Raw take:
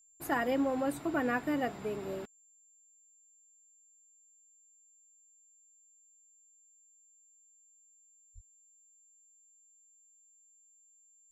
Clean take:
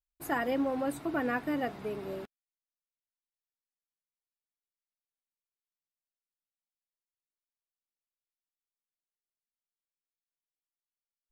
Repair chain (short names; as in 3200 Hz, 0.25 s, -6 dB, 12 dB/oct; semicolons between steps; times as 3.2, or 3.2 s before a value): clip repair -20 dBFS; notch 7300 Hz, Q 30; 8.34–8.46 HPF 140 Hz 24 dB/oct